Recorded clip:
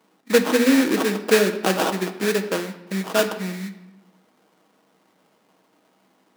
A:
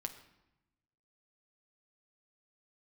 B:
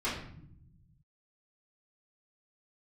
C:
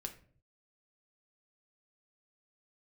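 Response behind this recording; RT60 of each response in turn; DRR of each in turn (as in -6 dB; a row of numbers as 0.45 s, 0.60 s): A; 0.90 s, 0.70 s, 0.50 s; 5.5 dB, -10.5 dB, 4.0 dB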